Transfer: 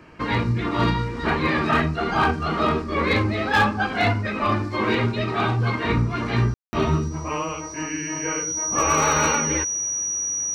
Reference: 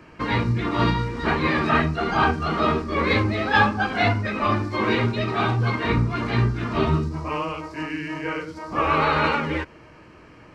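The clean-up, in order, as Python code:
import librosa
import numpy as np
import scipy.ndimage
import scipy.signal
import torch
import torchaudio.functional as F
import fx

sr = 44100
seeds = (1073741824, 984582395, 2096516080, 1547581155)

y = fx.fix_declip(x, sr, threshold_db=-12.0)
y = fx.notch(y, sr, hz=5800.0, q=30.0)
y = fx.fix_ambience(y, sr, seeds[0], print_start_s=0.0, print_end_s=0.5, start_s=6.54, end_s=6.73)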